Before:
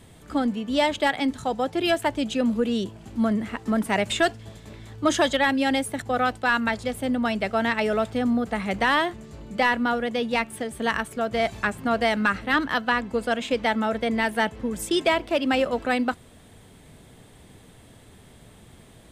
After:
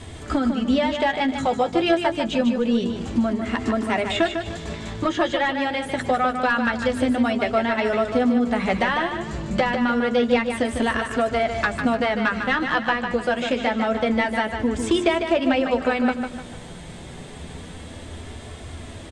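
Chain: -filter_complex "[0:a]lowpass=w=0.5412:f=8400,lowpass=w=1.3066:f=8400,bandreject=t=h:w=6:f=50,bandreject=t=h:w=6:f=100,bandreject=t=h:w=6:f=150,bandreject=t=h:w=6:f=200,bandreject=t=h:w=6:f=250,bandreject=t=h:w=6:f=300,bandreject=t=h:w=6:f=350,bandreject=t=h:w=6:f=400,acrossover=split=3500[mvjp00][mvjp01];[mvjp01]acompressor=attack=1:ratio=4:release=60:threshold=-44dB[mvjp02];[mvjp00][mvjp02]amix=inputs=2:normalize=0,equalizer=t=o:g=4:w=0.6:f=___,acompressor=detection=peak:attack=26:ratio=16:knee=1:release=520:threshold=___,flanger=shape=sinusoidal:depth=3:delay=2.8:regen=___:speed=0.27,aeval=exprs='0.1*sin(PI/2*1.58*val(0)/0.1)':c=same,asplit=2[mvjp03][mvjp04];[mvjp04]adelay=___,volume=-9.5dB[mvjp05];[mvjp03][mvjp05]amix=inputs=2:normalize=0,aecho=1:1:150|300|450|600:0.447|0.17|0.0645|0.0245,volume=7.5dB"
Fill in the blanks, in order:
79, -30dB, -48, 12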